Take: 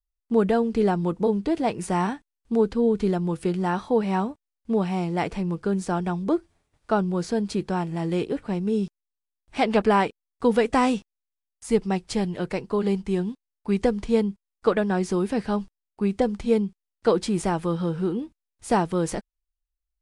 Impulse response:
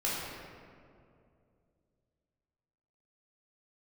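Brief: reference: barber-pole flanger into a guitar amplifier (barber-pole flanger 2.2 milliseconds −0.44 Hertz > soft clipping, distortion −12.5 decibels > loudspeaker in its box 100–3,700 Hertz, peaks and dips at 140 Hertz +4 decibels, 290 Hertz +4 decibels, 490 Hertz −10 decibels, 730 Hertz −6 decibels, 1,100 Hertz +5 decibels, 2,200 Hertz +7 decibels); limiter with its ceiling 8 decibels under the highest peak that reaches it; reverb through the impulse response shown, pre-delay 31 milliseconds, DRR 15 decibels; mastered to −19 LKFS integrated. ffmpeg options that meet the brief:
-filter_complex "[0:a]alimiter=limit=-16dB:level=0:latency=1,asplit=2[link_01][link_02];[1:a]atrim=start_sample=2205,adelay=31[link_03];[link_02][link_03]afir=irnorm=-1:irlink=0,volume=-22.5dB[link_04];[link_01][link_04]amix=inputs=2:normalize=0,asplit=2[link_05][link_06];[link_06]adelay=2.2,afreqshift=-0.44[link_07];[link_05][link_07]amix=inputs=2:normalize=1,asoftclip=threshold=-25.5dB,highpass=100,equalizer=frequency=140:width_type=q:width=4:gain=4,equalizer=frequency=290:width_type=q:width=4:gain=4,equalizer=frequency=490:width_type=q:width=4:gain=-10,equalizer=frequency=730:width_type=q:width=4:gain=-6,equalizer=frequency=1100:width_type=q:width=4:gain=5,equalizer=frequency=2200:width_type=q:width=4:gain=7,lowpass=frequency=3700:width=0.5412,lowpass=frequency=3700:width=1.3066,volume=15dB"

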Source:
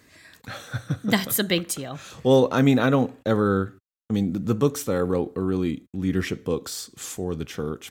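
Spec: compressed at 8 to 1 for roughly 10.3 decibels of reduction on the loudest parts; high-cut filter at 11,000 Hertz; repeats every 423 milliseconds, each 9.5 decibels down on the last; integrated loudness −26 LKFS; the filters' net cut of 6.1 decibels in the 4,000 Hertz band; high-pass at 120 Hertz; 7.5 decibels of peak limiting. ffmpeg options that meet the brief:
ffmpeg -i in.wav -af "highpass=120,lowpass=11000,equalizer=frequency=4000:width_type=o:gain=-8,acompressor=threshold=-24dB:ratio=8,alimiter=limit=-21.5dB:level=0:latency=1,aecho=1:1:423|846|1269|1692:0.335|0.111|0.0365|0.012,volume=7dB" out.wav

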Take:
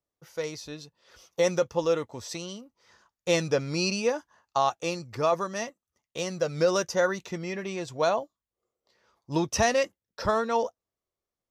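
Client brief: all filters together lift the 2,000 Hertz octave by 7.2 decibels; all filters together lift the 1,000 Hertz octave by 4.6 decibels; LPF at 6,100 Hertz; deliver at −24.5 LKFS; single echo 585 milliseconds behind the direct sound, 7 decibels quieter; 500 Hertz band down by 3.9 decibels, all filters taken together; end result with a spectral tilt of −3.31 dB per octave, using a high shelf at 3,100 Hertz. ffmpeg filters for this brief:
ffmpeg -i in.wav -af "lowpass=6100,equalizer=frequency=500:width_type=o:gain=-7,equalizer=frequency=1000:width_type=o:gain=6,equalizer=frequency=2000:width_type=o:gain=6.5,highshelf=frequency=3100:gain=3.5,aecho=1:1:585:0.447,volume=2.5dB" out.wav

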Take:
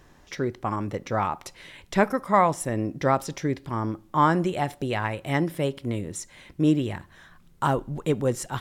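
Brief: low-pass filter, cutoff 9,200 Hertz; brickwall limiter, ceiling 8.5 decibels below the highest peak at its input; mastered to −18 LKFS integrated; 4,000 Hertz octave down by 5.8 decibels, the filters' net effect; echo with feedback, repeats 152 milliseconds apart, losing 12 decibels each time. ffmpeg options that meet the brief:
ffmpeg -i in.wav -af "lowpass=9200,equalizer=frequency=4000:width_type=o:gain=-8.5,alimiter=limit=-16.5dB:level=0:latency=1,aecho=1:1:152|304|456:0.251|0.0628|0.0157,volume=11dB" out.wav

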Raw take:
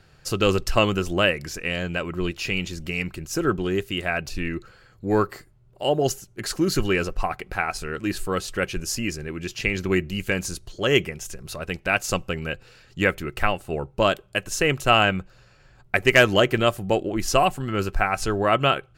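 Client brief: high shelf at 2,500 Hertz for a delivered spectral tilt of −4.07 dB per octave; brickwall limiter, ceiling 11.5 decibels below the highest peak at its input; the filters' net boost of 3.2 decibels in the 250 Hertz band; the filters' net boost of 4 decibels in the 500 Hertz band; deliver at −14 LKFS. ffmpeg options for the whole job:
ffmpeg -i in.wav -af "equalizer=frequency=250:width_type=o:gain=3,equalizer=frequency=500:width_type=o:gain=4,highshelf=frequency=2500:gain=4,volume=11dB,alimiter=limit=-1.5dB:level=0:latency=1" out.wav

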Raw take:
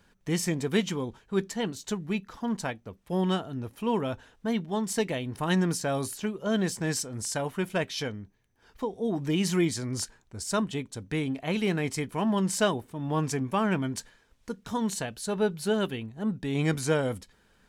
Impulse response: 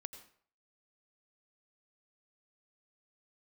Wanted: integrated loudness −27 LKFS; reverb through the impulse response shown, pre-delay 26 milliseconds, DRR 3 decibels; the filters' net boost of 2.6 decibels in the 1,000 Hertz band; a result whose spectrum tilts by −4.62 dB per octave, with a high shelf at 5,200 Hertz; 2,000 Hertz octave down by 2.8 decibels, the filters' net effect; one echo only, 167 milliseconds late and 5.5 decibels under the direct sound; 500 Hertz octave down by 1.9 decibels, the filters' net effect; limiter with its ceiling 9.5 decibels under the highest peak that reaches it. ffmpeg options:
-filter_complex "[0:a]equalizer=frequency=500:width_type=o:gain=-3.5,equalizer=frequency=1000:width_type=o:gain=5.5,equalizer=frequency=2000:width_type=o:gain=-6.5,highshelf=frequency=5200:gain=4.5,alimiter=limit=-22dB:level=0:latency=1,aecho=1:1:167:0.531,asplit=2[link_01][link_02];[1:a]atrim=start_sample=2205,adelay=26[link_03];[link_02][link_03]afir=irnorm=-1:irlink=0,volume=1dB[link_04];[link_01][link_04]amix=inputs=2:normalize=0,volume=3dB"

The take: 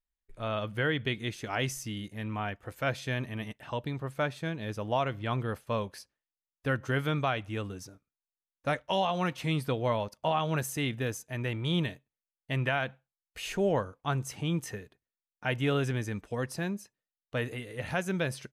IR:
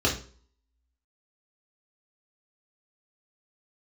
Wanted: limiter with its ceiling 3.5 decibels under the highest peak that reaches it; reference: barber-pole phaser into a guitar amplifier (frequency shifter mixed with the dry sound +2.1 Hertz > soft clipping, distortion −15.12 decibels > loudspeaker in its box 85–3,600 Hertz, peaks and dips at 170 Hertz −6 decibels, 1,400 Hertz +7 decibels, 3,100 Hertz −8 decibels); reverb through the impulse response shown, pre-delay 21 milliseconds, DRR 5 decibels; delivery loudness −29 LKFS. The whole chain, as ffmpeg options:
-filter_complex "[0:a]alimiter=limit=-20.5dB:level=0:latency=1,asplit=2[link_01][link_02];[1:a]atrim=start_sample=2205,adelay=21[link_03];[link_02][link_03]afir=irnorm=-1:irlink=0,volume=-18.5dB[link_04];[link_01][link_04]amix=inputs=2:normalize=0,asplit=2[link_05][link_06];[link_06]afreqshift=2.1[link_07];[link_05][link_07]amix=inputs=2:normalize=1,asoftclip=threshold=-26dB,highpass=85,equalizer=frequency=170:width_type=q:width=4:gain=-6,equalizer=frequency=1400:width_type=q:width=4:gain=7,equalizer=frequency=3100:width_type=q:width=4:gain=-8,lowpass=frequency=3600:width=0.5412,lowpass=frequency=3600:width=1.3066,volume=7.5dB"

